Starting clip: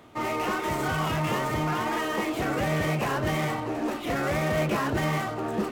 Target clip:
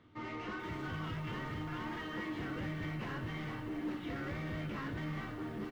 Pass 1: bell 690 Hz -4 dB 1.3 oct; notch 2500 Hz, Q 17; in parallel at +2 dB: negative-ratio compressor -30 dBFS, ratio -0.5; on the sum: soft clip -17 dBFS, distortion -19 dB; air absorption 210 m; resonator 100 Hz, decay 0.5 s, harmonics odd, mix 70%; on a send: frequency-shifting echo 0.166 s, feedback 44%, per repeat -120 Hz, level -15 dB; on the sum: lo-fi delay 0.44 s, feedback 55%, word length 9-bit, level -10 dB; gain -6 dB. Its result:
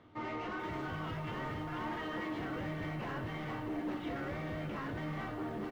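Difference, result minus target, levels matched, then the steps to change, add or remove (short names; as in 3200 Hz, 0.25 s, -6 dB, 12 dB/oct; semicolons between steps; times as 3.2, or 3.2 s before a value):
500 Hz band +2.5 dB
change: bell 690 Hz -12 dB 1.3 oct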